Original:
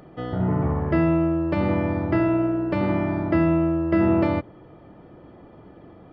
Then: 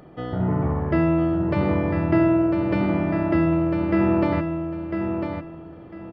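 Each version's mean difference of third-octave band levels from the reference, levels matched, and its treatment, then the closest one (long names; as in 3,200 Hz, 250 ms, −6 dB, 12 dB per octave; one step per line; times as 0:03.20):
3.0 dB: repeating echo 1,000 ms, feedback 23%, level −6.5 dB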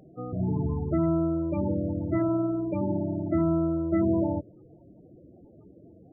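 6.0 dB: spectral peaks only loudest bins 16
level −4.5 dB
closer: first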